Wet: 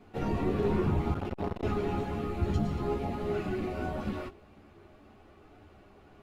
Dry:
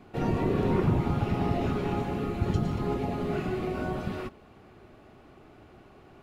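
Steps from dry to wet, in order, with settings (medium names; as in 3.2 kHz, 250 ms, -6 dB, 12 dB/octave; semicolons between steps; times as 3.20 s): chorus voices 6, 0.51 Hz, delay 12 ms, depth 2.6 ms; 1.14–1.63 s: transformer saturation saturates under 460 Hz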